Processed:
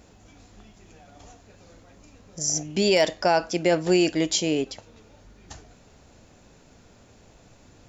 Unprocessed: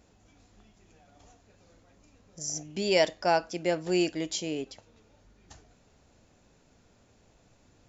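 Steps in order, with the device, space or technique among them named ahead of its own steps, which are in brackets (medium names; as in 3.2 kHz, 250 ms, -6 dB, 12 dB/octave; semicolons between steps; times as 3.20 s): clipper into limiter (hard clipper -13 dBFS, distortion -38 dB; peak limiter -19.5 dBFS, peak gain reduction 6.5 dB); trim +9 dB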